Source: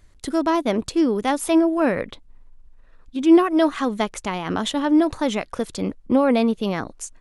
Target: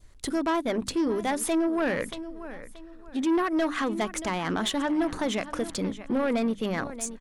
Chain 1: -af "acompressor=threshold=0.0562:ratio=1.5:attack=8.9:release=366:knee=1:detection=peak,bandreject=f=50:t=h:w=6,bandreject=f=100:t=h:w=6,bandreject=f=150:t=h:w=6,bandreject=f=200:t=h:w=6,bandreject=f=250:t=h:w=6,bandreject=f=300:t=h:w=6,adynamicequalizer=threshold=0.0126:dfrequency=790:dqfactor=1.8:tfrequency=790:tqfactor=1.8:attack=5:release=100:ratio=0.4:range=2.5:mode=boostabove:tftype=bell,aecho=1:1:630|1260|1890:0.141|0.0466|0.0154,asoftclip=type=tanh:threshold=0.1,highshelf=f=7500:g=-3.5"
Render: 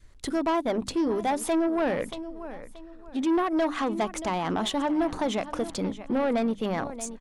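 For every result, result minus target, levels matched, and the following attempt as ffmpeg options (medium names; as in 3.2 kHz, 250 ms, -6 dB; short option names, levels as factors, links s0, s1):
8 kHz band -3.5 dB; 2 kHz band -3.5 dB
-af "acompressor=threshold=0.0562:ratio=1.5:attack=8.9:release=366:knee=1:detection=peak,bandreject=f=50:t=h:w=6,bandreject=f=100:t=h:w=6,bandreject=f=150:t=h:w=6,bandreject=f=200:t=h:w=6,bandreject=f=250:t=h:w=6,bandreject=f=300:t=h:w=6,adynamicequalizer=threshold=0.0126:dfrequency=790:dqfactor=1.8:tfrequency=790:tqfactor=1.8:attack=5:release=100:ratio=0.4:range=2.5:mode=boostabove:tftype=bell,aecho=1:1:630|1260|1890:0.141|0.0466|0.0154,asoftclip=type=tanh:threshold=0.1,highshelf=f=7500:g=2.5"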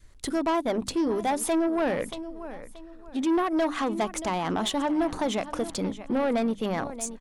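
2 kHz band -3.5 dB
-af "acompressor=threshold=0.0562:ratio=1.5:attack=8.9:release=366:knee=1:detection=peak,bandreject=f=50:t=h:w=6,bandreject=f=100:t=h:w=6,bandreject=f=150:t=h:w=6,bandreject=f=200:t=h:w=6,bandreject=f=250:t=h:w=6,bandreject=f=300:t=h:w=6,adynamicequalizer=threshold=0.0126:dfrequency=1700:dqfactor=1.8:tfrequency=1700:tqfactor=1.8:attack=5:release=100:ratio=0.4:range=2.5:mode=boostabove:tftype=bell,aecho=1:1:630|1260|1890:0.141|0.0466|0.0154,asoftclip=type=tanh:threshold=0.1,highshelf=f=7500:g=2.5"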